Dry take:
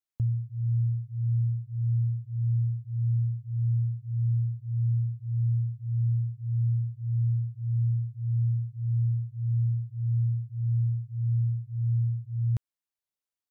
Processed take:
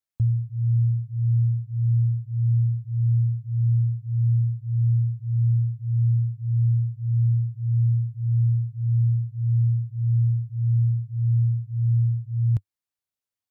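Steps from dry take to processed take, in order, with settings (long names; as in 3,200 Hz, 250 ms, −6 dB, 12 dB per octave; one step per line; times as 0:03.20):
parametric band 99 Hz +7.5 dB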